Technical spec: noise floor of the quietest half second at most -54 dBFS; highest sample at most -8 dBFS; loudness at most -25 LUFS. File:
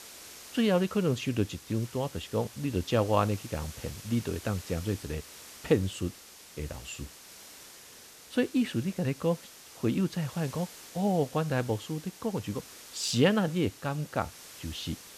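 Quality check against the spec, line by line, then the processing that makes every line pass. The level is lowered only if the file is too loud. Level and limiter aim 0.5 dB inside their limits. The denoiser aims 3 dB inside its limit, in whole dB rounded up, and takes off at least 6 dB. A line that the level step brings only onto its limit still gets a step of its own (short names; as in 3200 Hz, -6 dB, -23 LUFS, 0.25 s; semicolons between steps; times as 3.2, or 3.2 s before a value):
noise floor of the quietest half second -51 dBFS: fail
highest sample -9.0 dBFS: OK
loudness -31.0 LUFS: OK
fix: denoiser 6 dB, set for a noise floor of -51 dBFS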